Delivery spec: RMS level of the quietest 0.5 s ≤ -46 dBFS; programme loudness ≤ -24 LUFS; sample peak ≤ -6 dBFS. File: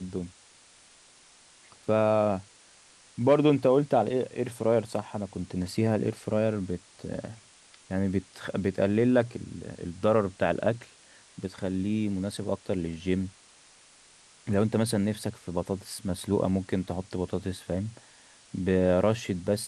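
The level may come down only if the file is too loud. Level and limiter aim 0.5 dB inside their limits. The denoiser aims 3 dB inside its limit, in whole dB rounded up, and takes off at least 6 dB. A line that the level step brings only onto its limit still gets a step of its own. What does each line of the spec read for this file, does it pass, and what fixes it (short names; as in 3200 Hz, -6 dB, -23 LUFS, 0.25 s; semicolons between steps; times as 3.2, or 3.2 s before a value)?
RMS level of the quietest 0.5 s -57 dBFS: OK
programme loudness -28.5 LUFS: OK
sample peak -10.0 dBFS: OK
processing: none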